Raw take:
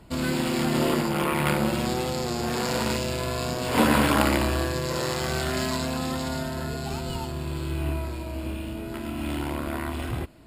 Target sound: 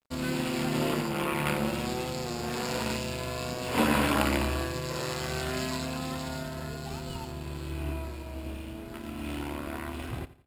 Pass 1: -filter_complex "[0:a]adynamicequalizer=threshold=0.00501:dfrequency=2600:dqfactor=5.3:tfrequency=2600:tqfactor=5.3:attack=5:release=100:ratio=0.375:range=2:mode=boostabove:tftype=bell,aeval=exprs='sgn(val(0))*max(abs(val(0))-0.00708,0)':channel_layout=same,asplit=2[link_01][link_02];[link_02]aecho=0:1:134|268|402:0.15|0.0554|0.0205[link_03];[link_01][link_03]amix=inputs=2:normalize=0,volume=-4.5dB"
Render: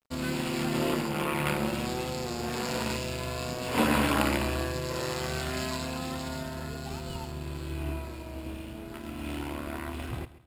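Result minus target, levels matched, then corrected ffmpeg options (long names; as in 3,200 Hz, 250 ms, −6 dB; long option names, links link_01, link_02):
echo 48 ms late
-filter_complex "[0:a]adynamicequalizer=threshold=0.00501:dfrequency=2600:dqfactor=5.3:tfrequency=2600:tqfactor=5.3:attack=5:release=100:ratio=0.375:range=2:mode=boostabove:tftype=bell,aeval=exprs='sgn(val(0))*max(abs(val(0))-0.00708,0)':channel_layout=same,asplit=2[link_01][link_02];[link_02]aecho=0:1:86|172|258:0.15|0.0554|0.0205[link_03];[link_01][link_03]amix=inputs=2:normalize=0,volume=-4.5dB"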